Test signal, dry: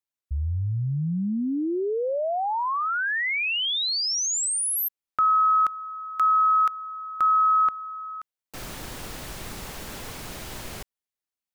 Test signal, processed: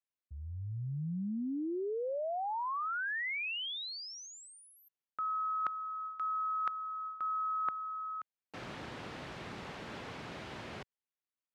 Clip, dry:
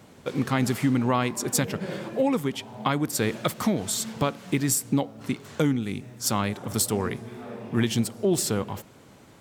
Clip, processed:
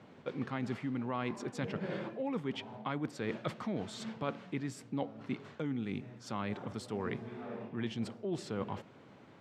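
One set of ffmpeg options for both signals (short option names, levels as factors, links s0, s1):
-af "areverse,acompressor=threshold=0.0282:ratio=6:attack=59:release=162:knee=1:detection=rms,areverse,highpass=110,lowpass=3100,volume=0.596"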